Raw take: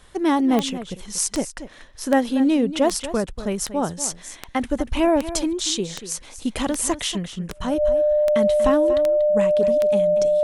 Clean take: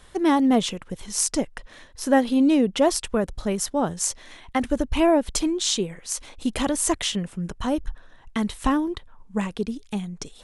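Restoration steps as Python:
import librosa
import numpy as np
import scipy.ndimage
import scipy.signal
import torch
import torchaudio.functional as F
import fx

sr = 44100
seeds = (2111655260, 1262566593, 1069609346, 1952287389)

y = fx.fix_declick_ar(x, sr, threshold=10.0)
y = fx.notch(y, sr, hz=600.0, q=30.0)
y = fx.fix_echo_inverse(y, sr, delay_ms=237, level_db=-13.0)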